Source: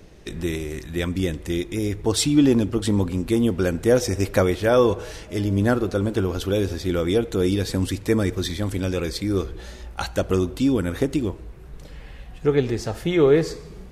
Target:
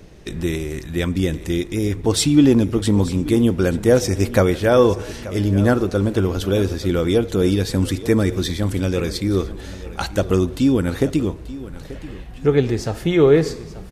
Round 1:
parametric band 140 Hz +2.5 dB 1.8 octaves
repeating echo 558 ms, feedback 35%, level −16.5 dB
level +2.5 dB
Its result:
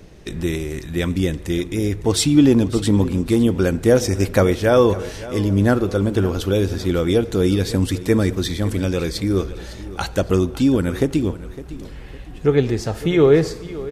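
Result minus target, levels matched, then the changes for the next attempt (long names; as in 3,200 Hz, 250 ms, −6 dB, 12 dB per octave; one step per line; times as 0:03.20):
echo 326 ms early
change: repeating echo 884 ms, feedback 35%, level −16.5 dB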